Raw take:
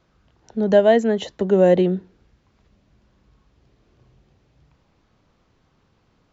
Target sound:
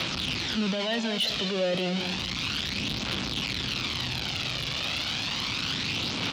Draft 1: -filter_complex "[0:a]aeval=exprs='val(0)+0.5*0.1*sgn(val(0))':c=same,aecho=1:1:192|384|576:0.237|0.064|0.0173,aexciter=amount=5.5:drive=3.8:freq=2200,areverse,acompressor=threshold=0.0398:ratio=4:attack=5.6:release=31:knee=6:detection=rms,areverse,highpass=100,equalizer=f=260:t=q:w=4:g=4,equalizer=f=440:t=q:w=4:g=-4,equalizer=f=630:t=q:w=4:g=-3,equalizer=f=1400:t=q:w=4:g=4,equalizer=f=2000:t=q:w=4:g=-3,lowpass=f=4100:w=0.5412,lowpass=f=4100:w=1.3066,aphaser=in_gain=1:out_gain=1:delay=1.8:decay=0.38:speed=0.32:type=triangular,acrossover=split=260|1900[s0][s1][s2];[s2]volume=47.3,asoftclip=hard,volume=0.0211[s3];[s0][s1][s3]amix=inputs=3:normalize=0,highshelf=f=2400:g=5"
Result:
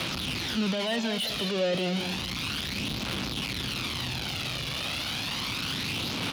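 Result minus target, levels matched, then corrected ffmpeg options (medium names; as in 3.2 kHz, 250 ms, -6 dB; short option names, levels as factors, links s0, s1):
overload inside the chain: distortion +12 dB
-filter_complex "[0:a]aeval=exprs='val(0)+0.5*0.1*sgn(val(0))':c=same,aecho=1:1:192|384|576:0.237|0.064|0.0173,aexciter=amount=5.5:drive=3.8:freq=2200,areverse,acompressor=threshold=0.0398:ratio=4:attack=5.6:release=31:knee=6:detection=rms,areverse,highpass=100,equalizer=f=260:t=q:w=4:g=4,equalizer=f=440:t=q:w=4:g=-4,equalizer=f=630:t=q:w=4:g=-3,equalizer=f=1400:t=q:w=4:g=4,equalizer=f=2000:t=q:w=4:g=-3,lowpass=f=4100:w=0.5412,lowpass=f=4100:w=1.3066,aphaser=in_gain=1:out_gain=1:delay=1.8:decay=0.38:speed=0.32:type=triangular,acrossover=split=260|1900[s0][s1][s2];[s2]volume=20,asoftclip=hard,volume=0.0501[s3];[s0][s1][s3]amix=inputs=3:normalize=0,highshelf=f=2400:g=5"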